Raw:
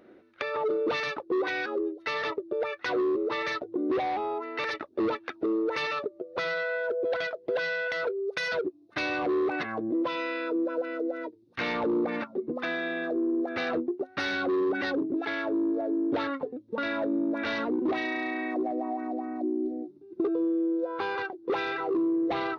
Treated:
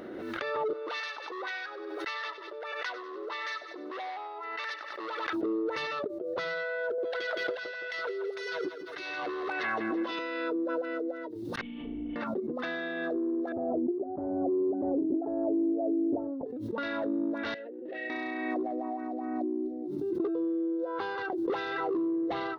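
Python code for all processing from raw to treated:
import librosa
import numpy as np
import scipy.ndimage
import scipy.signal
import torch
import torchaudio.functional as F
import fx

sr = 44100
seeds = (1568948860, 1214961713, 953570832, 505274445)

y = fx.chain(x, sr, fx.highpass(hz=910.0, slope=12),
    fx.echo_feedback(ms=96, feedback_pct=37, wet_db=-13.5), at=(0.73, 5.33))
y = fx.chain(y, sr, fx.tilt_shelf(db=-8.5, hz=670.0),
    fx.over_compress(threshold_db=-31.0, ratio=-0.5),
    fx.echo_feedback(ms=167, feedback_pct=46, wet_db=-9), at=(6.98, 10.19))
y = fx.chain(y, sr, fx.lower_of_two(delay_ms=4.4),
    fx.formant_cascade(vowel='i'),
    fx.room_flutter(wall_m=6.4, rt60_s=0.99), at=(11.61, 12.16))
y = fx.chain(y, sr, fx.ellip_lowpass(hz=750.0, order=4, stop_db=80),
    fx.comb(ms=3.1, depth=0.35), at=(13.52, 16.46))
y = fx.chain(y, sr, fx.vowel_filter(vowel='e'),
    fx.peak_eq(hz=160.0, db=4.5, octaves=1.7),
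    fx.band_squash(depth_pct=40), at=(17.54, 18.1))
y = fx.notch(y, sr, hz=2400.0, q=8.2)
y = fx.pre_swell(y, sr, db_per_s=23.0)
y = y * 10.0 ** (-3.5 / 20.0)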